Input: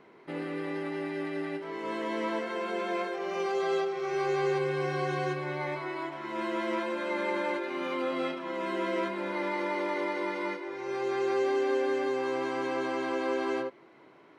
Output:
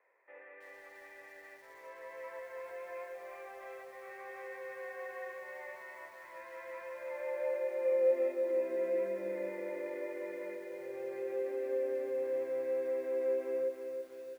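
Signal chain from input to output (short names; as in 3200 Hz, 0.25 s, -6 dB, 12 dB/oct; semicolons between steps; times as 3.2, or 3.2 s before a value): vocal tract filter e; outdoor echo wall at 57 m, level -27 dB; high-pass sweep 1000 Hz -> 83 Hz, 6.9–10.42; lo-fi delay 0.324 s, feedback 55%, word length 10-bit, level -6.5 dB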